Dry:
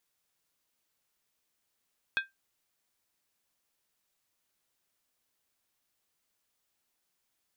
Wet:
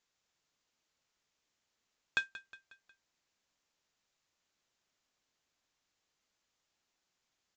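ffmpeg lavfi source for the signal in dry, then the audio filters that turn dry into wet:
-f lavfi -i "aevalsrc='0.075*pow(10,-3*t/0.17)*sin(2*PI*1580*t)+0.0422*pow(10,-3*t/0.135)*sin(2*PI*2518.5*t)+0.0237*pow(10,-3*t/0.116)*sin(2*PI*3374.9*t)+0.0133*pow(10,-3*t/0.112)*sin(2*PI*3627.7*t)+0.0075*pow(10,-3*t/0.104)*sin(2*PI*4191.7*t)':d=0.63:s=44100"
-af "aresample=16000,acrusher=bits=4:mode=log:mix=0:aa=0.000001,aresample=44100,aecho=1:1:181|362|543|724:0.158|0.0792|0.0396|0.0198"

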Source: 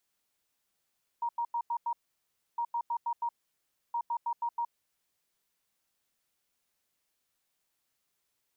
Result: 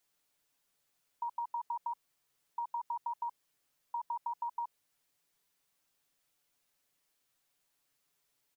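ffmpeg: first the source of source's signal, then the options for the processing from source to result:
-f lavfi -i "aevalsrc='0.0376*sin(2*PI*942*t)*clip(min(mod(mod(t,1.36),0.16),0.07-mod(mod(t,1.36),0.16))/0.005,0,1)*lt(mod(t,1.36),0.8)':d=4.08:s=44100"
-af "aecho=1:1:7:0.52"

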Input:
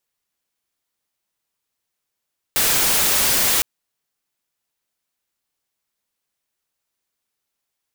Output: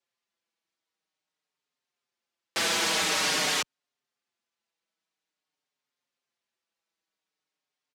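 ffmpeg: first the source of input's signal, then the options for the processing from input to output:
-f lavfi -i "anoisesrc=c=white:a=0.231:d=1.06:r=44100:seed=1"
-filter_complex "[0:a]highpass=170,lowpass=5.4k,asplit=2[a][b];[b]adelay=5.3,afreqshift=-0.48[c];[a][c]amix=inputs=2:normalize=1"

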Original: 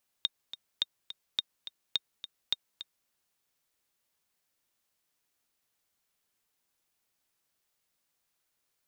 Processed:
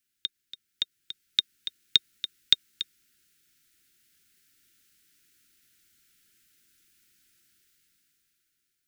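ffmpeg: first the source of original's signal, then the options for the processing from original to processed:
-f lavfi -i "aevalsrc='pow(10,(-14-13*gte(mod(t,2*60/211),60/211))/20)*sin(2*PI*3690*mod(t,60/211))*exp(-6.91*mod(t,60/211)/0.03)':d=2.84:s=44100"
-af "dynaudnorm=f=300:g=9:m=14dB,asuperstop=centerf=730:order=20:qfactor=0.78"

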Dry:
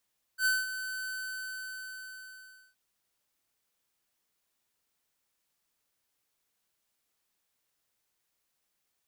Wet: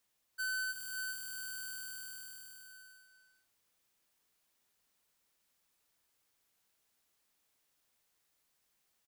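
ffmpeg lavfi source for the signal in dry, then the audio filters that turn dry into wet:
-f lavfi -i "aevalsrc='0.0531*(2*lt(mod(1520*t,1),0.5)-1)':d=2.37:s=44100,afade=t=in:d=0.078,afade=t=out:st=0.078:d=0.198:silence=0.266,afade=t=out:st=0.69:d=1.68"
-filter_complex "[0:a]asplit=2[a][b];[b]aecho=0:1:328:0.562[c];[a][c]amix=inputs=2:normalize=0,alimiter=level_in=12dB:limit=-24dB:level=0:latency=1,volume=-12dB,asplit=2[d][e];[e]aecho=0:1:400:0.376[f];[d][f]amix=inputs=2:normalize=0"

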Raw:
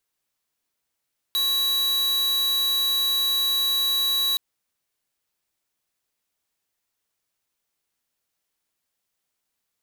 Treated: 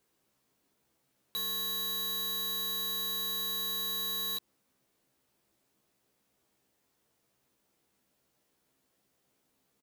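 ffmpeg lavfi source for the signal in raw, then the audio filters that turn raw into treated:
-f lavfi -i "aevalsrc='0.075*(2*lt(mod(3910*t,1),0.5)-1)':d=3.02:s=44100"
-filter_complex "[0:a]equalizer=f=240:w=0.32:g=14,alimiter=level_in=4.5dB:limit=-24dB:level=0:latency=1,volume=-4.5dB,asplit=2[a][b];[b]adelay=15,volume=-3dB[c];[a][c]amix=inputs=2:normalize=0"

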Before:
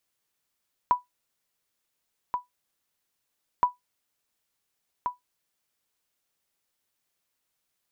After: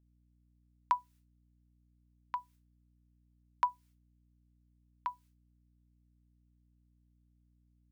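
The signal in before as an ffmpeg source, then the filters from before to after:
-f lavfi -i "aevalsrc='0.251*(sin(2*PI*986*mod(t,2.72))*exp(-6.91*mod(t,2.72)/0.15)+0.422*sin(2*PI*986*max(mod(t,2.72)-1.43,0))*exp(-6.91*max(mod(t,2.72)-1.43,0)/0.15))':d=5.44:s=44100"
-af "agate=range=-33dB:threshold=-52dB:ratio=3:detection=peak,highpass=1.2k,aeval=exprs='val(0)+0.000398*(sin(2*PI*60*n/s)+sin(2*PI*2*60*n/s)/2+sin(2*PI*3*60*n/s)/3+sin(2*PI*4*60*n/s)/4+sin(2*PI*5*60*n/s)/5)':c=same"

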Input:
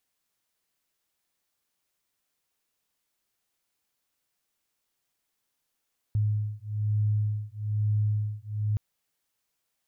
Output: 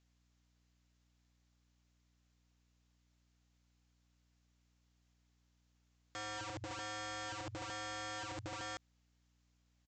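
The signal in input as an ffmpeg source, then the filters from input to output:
-f lavfi -i "aevalsrc='0.0422*(sin(2*PI*105*t)+sin(2*PI*106.1*t))':d=2.62:s=44100"
-af "alimiter=level_in=1.5dB:limit=-24dB:level=0:latency=1:release=64,volume=-1.5dB,aresample=16000,aeval=exprs='(mod(100*val(0)+1,2)-1)/100':c=same,aresample=44100,aeval=exprs='val(0)+0.0002*(sin(2*PI*60*n/s)+sin(2*PI*2*60*n/s)/2+sin(2*PI*3*60*n/s)/3+sin(2*PI*4*60*n/s)/4+sin(2*PI*5*60*n/s)/5)':c=same"

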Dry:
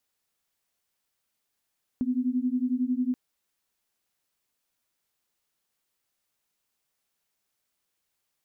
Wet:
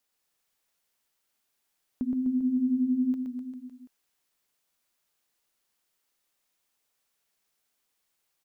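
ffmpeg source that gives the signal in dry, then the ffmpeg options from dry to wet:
-f lavfi -i "aevalsrc='0.0447*(sin(2*PI*246*t)+sin(2*PI*257*t))':d=1.13:s=44100"
-filter_complex "[0:a]equalizer=f=100:w=0.66:g=-5,asplit=2[a][b];[b]aecho=0:1:120|252|397.2|556.9|732.6:0.631|0.398|0.251|0.158|0.1[c];[a][c]amix=inputs=2:normalize=0"

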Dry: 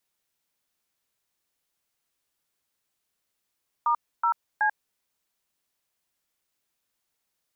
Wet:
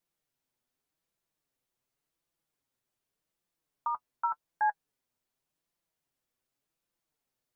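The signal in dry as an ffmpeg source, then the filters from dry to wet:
-f lavfi -i "aevalsrc='0.075*clip(min(mod(t,0.374),0.089-mod(t,0.374))/0.002,0,1)*(eq(floor(t/0.374),0)*(sin(2*PI*941*mod(t,0.374))+sin(2*PI*1209*mod(t,0.374)))+eq(floor(t/0.374),1)*(sin(2*PI*941*mod(t,0.374))+sin(2*PI*1336*mod(t,0.374)))+eq(floor(t/0.374),2)*(sin(2*PI*852*mod(t,0.374))+sin(2*PI*1633*mod(t,0.374))))':d=1.122:s=44100"
-af "tiltshelf=f=880:g=4.5,flanger=delay=5.8:depth=2.3:regen=39:speed=0.87:shape=sinusoidal"

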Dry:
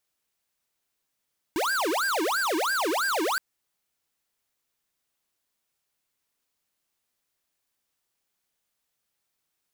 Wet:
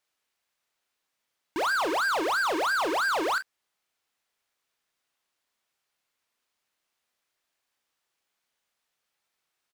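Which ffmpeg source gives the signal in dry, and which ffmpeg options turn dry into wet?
-f lavfi -i "aevalsrc='0.0501*(2*lt(mod((958.5*t-651.5/(2*PI*3)*sin(2*PI*3*t)),1),0.5)-1)':d=1.82:s=44100"
-filter_complex "[0:a]aecho=1:1:30|43:0.251|0.141,asplit=2[a][b];[b]highpass=f=720:p=1,volume=8dB,asoftclip=type=tanh:threshold=-20.5dB[c];[a][c]amix=inputs=2:normalize=0,lowpass=f=3.3k:p=1,volume=-6dB"

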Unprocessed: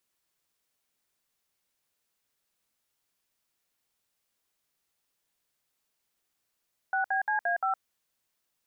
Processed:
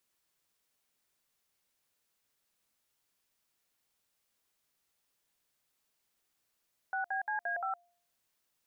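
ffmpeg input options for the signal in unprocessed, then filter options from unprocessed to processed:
-f lavfi -i "aevalsrc='0.0422*clip(min(mod(t,0.174),0.113-mod(t,0.174))/0.002,0,1)*(eq(floor(t/0.174),0)*(sin(2*PI*770*mod(t,0.174))+sin(2*PI*1477*mod(t,0.174)))+eq(floor(t/0.174),1)*(sin(2*PI*770*mod(t,0.174))+sin(2*PI*1633*mod(t,0.174)))+eq(floor(t/0.174),2)*(sin(2*PI*852*mod(t,0.174))+sin(2*PI*1633*mod(t,0.174)))+eq(floor(t/0.174),3)*(sin(2*PI*697*mod(t,0.174))+sin(2*PI*1633*mod(t,0.174)))+eq(floor(t/0.174),4)*(sin(2*PI*770*mod(t,0.174))+sin(2*PI*1336*mod(t,0.174))))':d=0.87:s=44100"
-af "bandreject=f=348.8:t=h:w=4,bandreject=f=697.6:t=h:w=4,alimiter=level_in=4dB:limit=-24dB:level=0:latency=1:release=343,volume=-4dB"

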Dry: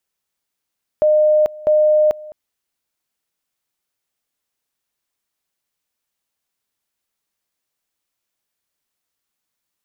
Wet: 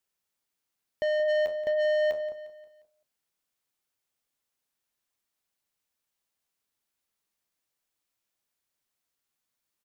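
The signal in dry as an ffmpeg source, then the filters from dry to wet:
-f lavfi -i "aevalsrc='pow(10,(-10-21.5*gte(mod(t,0.65),0.44))/20)*sin(2*PI*610*t)':d=1.3:s=44100"
-filter_complex "[0:a]flanger=delay=7.5:depth=5.5:regen=-74:speed=0.22:shape=sinusoidal,asoftclip=type=tanh:threshold=-25dB,asplit=2[a][b];[b]aecho=0:1:177|354|531|708:0.178|0.0818|0.0376|0.0173[c];[a][c]amix=inputs=2:normalize=0"

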